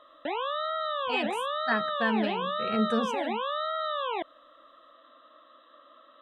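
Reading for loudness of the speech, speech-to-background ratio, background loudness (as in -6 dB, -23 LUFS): -31.5 LUFS, -0.5 dB, -31.0 LUFS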